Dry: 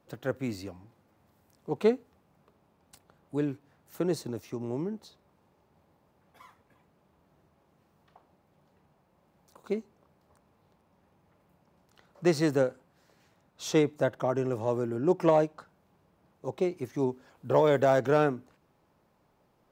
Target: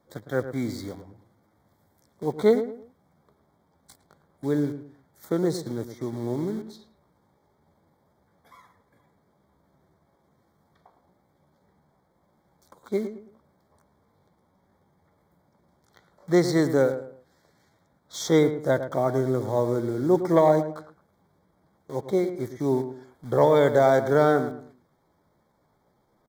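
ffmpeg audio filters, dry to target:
ffmpeg -i in.wav -filter_complex "[0:a]atempo=0.75,asplit=2[link_01][link_02];[link_02]acrusher=bits=6:mix=0:aa=0.000001,volume=-8dB[link_03];[link_01][link_03]amix=inputs=2:normalize=0,asuperstop=centerf=2700:order=20:qfactor=3.2,asplit=2[link_04][link_05];[link_05]adelay=109,lowpass=frequency=1700:poles=1,volume=-10dB,asplit=2[link_06][link_07];[link_07]adelay=109,lowpass=frequency=1700:poles=1,volume=0.31,asplit=2[link_08][link_09];[link_09]adelay=109,lowpass=frequency=1700:poles=1,volume=0.31[link_10];[link_04][link_06][link_08][link_10]amix=inputs=4:normalize=0,volume=1dB" out.wav

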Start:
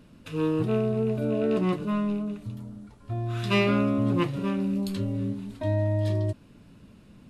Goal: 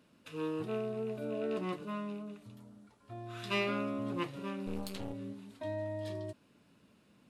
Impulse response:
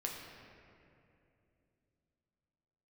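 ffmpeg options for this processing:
-filter_complex "[0:a]highpass=frequency=400:poles=1,asplit=3[link_01][link_02][link_03];[link_01]afade=type=out:start_time=4.66:duration=0.02[link_04];[link_02]aeval=exprs='0.0708*(cos(1*acos(clip(val(0)/0.0708,-1,1)))-cos(1*PI/2))+0.0251*(cos(4*acos(clip(val(0)/0.0708,-1,1)))-cos(4*PI/2))':channel_layout=same,afade=type=in:start_time=4.66:duration=0.02,afade=type=out:start_time=5.12:duration=0.02[link_05];[link_03]afade=type=in:start_time=5.12:duration=0.02[link_06];[link_04][link_05][link_06]amix=inputs=3:normalize=0,volume=-7dB"

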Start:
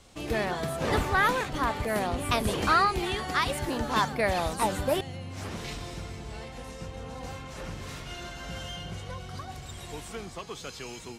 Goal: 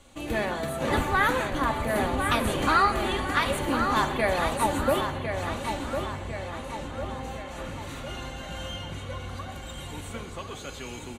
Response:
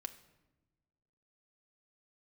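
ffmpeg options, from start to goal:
-filter_complex "[0:a]equalizer=frequency=5200:width=6.4:gain=-14.5,asplit=2[link_01][link_02];[link_02]adelay=1053,lowpass=frequency=4400:poles=1,volume=-6.5dB,asplit=2[link_03][link_04];[link_04]adelay=1053,lowpass=frequency=4400:poles=1,volume=0.52,asplit=2[link_05][link_06];[link_06]adelay=1053,lowpass=frequency=4400:poles=1,volume=0.52,asplit=2[link_07][link_08];[link_08]adelay=1053,lowpass=frequency=4400:poles=1,volume=0.52,asplit=2[link_09][link_10];[link_10]adelay=1053,lowpass=frequency=4400:poles=1,volume=0.52,asplit=2[link_11][link_12];[link_12]adelay=1053,lowpass=frequency=4400:poles=1,volume=0.52[link_13];[link_01][link_03][link_05][link_07][link_09][link_11][link_13]amix=inputs=7:normalize=0[link_14];[1:a]atrim=start_sample=2205,asetrate=33075,aresample=44100[link_15];[link_14][link_15]afir=irnorm=-1:irlink=0,volume=3dB"

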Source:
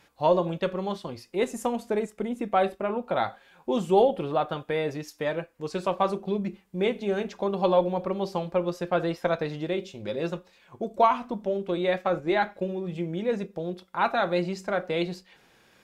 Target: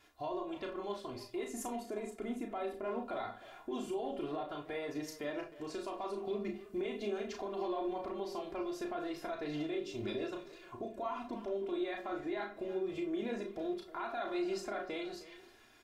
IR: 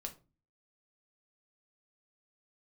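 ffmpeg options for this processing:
-filter_complex "[0:a]aecho=1:1:2.9:1,dynaudnorm=framelen=640:gausssize=5:maxgain=11.5dB,alimiter=limit=-23.5dB:level=0:latency=1:release=247,asplit=2[link_01][link_02];[link_02]adelay=310,highpass=300,lowpass=3400,asoftclip=type=hard:threshold=-31.5dB,volume=-13dB[link_03];[link_01][link_03]amix=inputs=2:normalize=0,asplit=2[link_04][link_05];[1:a]atrim=start_sample=2205,adelay=34[link_06];[link_05][link_06]afir=irnorm=-1:irlink=0,volume=-1dB[link_07];[link_04][link_07]amix=inputs=2:normalize=0,volume=-8.5dB"

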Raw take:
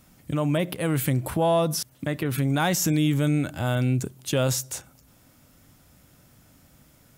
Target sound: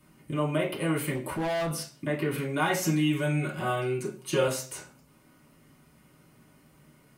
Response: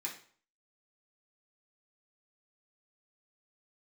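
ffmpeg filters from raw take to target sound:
-filter_complex "[0:a]acrossover=split=340[link_01][link_02];[link_01]acompressor=threshold=-32dB:ratio=6[link_03];[link_02]highshelf=frequency=2800:gain=-10[link_04];[link_03][link_04]amix=inputs=2:normalize=0[link_05];[1:a]atrim=start_sample=2205,asetrate=52920,aresample=44100[link_06];[link_05][link_06]afir=irnorm=-1:irlink=0,asettb=1/sr,asplit=3[link_07][link_08][link_09];[link_07]atrim=end=1.154[link_10];[link_08]atrim=start=1.15:end=1.74,asetpts=PTS-STARTPTS,afade=type=in:duration=0.004:curve=qsin,afade=type=out:start_time=0.586:duration=0.004:curve=qsin,asoftclip=type=hard:threshold=-31dB[link_11];[link_09]atrim=start=1.736[link_12];[link_10][link_11]acrossfade=duration=0.004:curve1=hsin:curve2=qsin[link_13];[link_13][link_12]acrossfade=duration=0.004:curve1=qsin:curve2=hsin,asettb=1/sr,asplit=3[link_14][link_15][link_16];[link_14]atrim=end=2.824[link_17];[link_15]atrim=start=2.82:end=4.48,asetpts=PTS-STARTPTS,afade=type=in:duration=0.004:curve=qsin,afade=type=out:start_time=1.656:duration=0.004:curve=qsin,aecho=1:1:5.5:0.71,atrim=end_sample=73206[link_18];[link_16]atrim=start=4.476[link_19];[link_17][link_18]acrossfade=duration=0.004:curve1=hsin:curve2=qsin[link_20];[link_20][link_19]acrossfade=duration=0.004:curve1=qsin:curve2=hsin,volume=4dB"

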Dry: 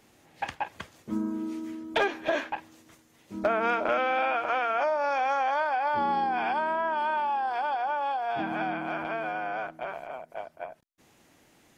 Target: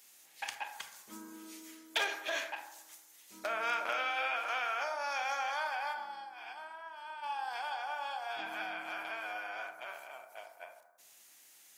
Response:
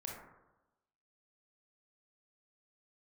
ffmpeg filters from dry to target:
-filter_complex "[0:a]aderivative,asplit=3[link_01][link_02][link_03];[link_01]afade=type=out:start_time=5.92:duration=0.02[link_04];[link_02]agate=range=-33dB:threshold=-36dB:ratio=3:detection=peak,afade=type=in:start_time=5.92:duration=0.02,afade=type=out:start_time=7.22:duration=0.02[link_05];[link_03]afade=type=in:start_time=7.22:duration=0.02[link_06];[link_04][link_05][link_06]amix=inputs=3:normalize=0,asplit=2[link_07][link_08];[1:a]atrim=start_sample=2205[link_09];[link_08][link_09]afir=irnorm=-1:irlink=0,volume=1.5dB[link_10];[link_07][link_10]amix=inputs=2:normalize=0,volume=3dB"

